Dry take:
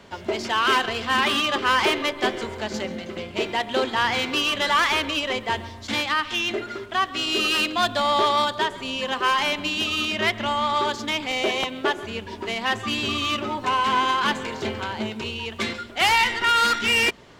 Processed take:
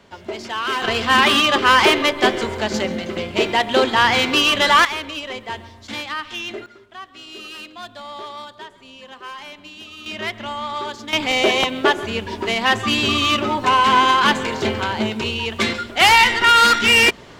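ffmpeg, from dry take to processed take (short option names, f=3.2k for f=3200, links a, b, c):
-af "asetnsamples=n=441:p=0,asendcmd='0.82 volume volume 7dB;4.85 volume volume -4dB;6.66 volume volume -13.5dB;10.06 volume volume -4dB;11.13 volume volume 7dB',volume=-3dB"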